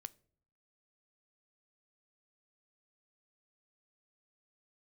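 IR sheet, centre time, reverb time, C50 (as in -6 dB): 2 ms, 0.60 s, 24.0 dB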